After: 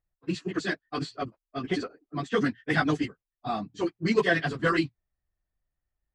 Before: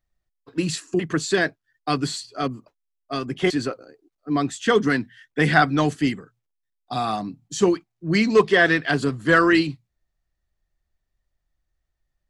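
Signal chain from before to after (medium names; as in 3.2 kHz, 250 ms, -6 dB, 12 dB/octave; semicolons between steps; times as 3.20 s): level-controlled noise filter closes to 2.1 kHz, open at -12.5 dBFS; plain phase-vocoder stretch 0.5×; trim -2.5 dB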